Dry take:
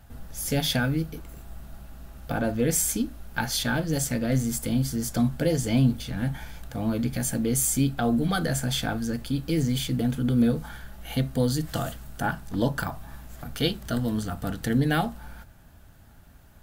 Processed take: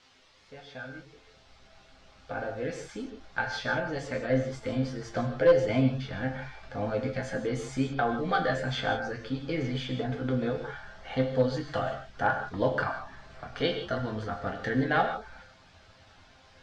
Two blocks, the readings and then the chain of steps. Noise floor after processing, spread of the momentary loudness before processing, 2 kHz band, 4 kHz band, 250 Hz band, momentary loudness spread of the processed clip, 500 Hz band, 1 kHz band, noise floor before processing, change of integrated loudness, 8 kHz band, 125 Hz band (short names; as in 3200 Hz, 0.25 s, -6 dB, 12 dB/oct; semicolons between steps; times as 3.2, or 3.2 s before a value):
-58 dBFS, 18 LU, +1.0 dB, -7.0 dB, -7.0 dB, 14 LU, +2.5 dB, +2.0 dB, -51 dBFS, -4.0 dB, -21.5 dB, -7.0 dB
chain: opening faded in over 4.90 s; band shelf 930 Hz +9 dB 2.8 oct; in parallel at -10 dB: requantised 6-bit, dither triangular; on the sum: resonator bank F2 minor, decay 0.26 s; reverb removal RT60 0.52 s; non-linear reverb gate 0.19 s flat, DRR 5.5 dB; one-sided clip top -18.5 dBFS; LPF 5000 Hz 24 dB/oct; gain +2.5 dB